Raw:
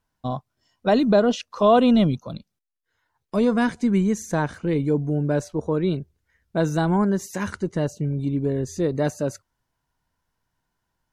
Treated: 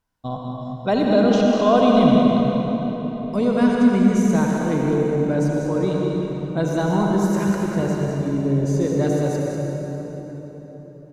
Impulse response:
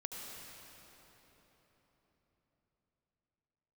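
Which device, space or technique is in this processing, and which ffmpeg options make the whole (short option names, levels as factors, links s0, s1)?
cave: -filter_complex "[0:a]bandreject=f=1700:w=26,aecho=1:1:195:0.376[s0];[1:a]atrim=start_sample=2205[s1];[s0][s1]afir=irnorm=-1:irlink=0,volume=1.33"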